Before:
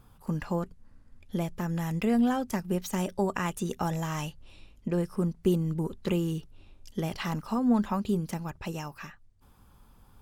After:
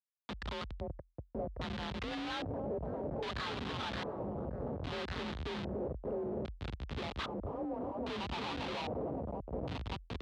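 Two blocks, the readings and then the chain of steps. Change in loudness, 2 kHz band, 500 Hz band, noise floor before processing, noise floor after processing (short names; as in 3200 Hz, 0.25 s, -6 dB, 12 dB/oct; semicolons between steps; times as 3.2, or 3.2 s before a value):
-9.5 dB, -3.0 dB, -5.0 dB, -58 dBFS, -66 dBFS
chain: Wiener smoothing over 25 samples; HPF 160 Hz 12 dB/oct; notch 600 Hz, Q 12; in parallel at -1 dB: limiter -24 dBFS, peak gain reduction 10 dB; on the sum: band-pass sweep 1500 Hz -> 460 Hz, 6.63–10; on a send: echo with dull and thin repeats by turns 0.286 s, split 1100 Hz, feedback 85%, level -10 dB; on the sum: Schmitt trigger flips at -47 dBFS; LFO low-pass square 0.62 Hz 540–3600 Hz; frequency shift +41 Hz; gain +3 dB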